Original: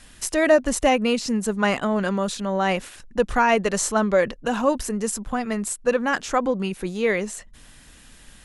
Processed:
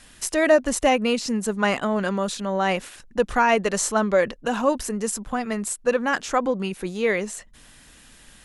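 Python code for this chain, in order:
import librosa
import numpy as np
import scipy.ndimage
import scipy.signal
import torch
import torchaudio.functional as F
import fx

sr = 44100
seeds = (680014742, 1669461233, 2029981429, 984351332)

y = fx.low_shelf(x, sr, hz=140.0, db=-5.0)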